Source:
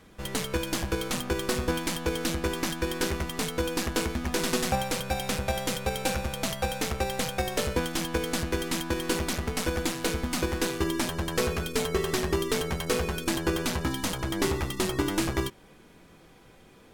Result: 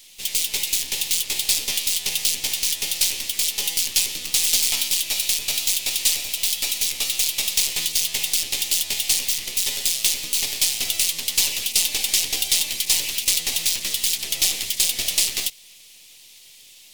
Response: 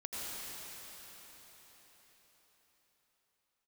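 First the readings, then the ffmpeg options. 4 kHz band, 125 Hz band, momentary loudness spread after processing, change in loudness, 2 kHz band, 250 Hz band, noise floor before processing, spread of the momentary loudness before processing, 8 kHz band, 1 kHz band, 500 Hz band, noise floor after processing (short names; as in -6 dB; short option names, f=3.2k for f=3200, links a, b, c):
+13.0 dB, -15.5 dB, 2 LU, +9.0 dB, +3.0 dB, -17.0 dB, -54 dBFS, 2 LU, +15.0 dB, -11.5 dB, -15.0 dB, -48 dBFS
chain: -af "aeval=exprs='abs(val(0))':c=same,aexciter=amount=9.2:drive=9.6:freq=2.3k,volume=-9.5dB"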